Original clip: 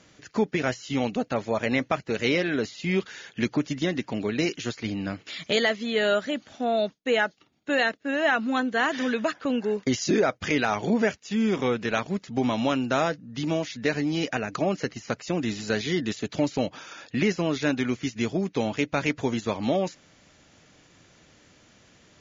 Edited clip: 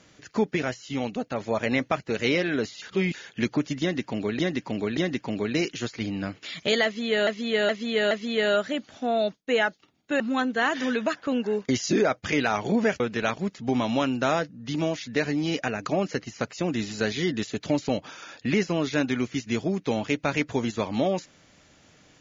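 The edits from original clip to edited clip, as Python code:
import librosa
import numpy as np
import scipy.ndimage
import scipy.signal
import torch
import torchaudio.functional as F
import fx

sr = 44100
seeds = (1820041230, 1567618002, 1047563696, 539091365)

y = fx.edit(x, sr, fx.clip_gain(start_s=0.64, length_s=0.76, db=-3.0),
    fx.reverse_span(start_s=2.82, length_s=0.32),
    fx.repeat(start_s=3.81, length_s=0.58, count=3),
    fx.repeat(start_s=5.69, length_s=0.42, count=4),
    fx.cut(start_s=7.78, length_s=0.6),
    fx.cut(start_s=11.18, length_s=0.51), tone=tone)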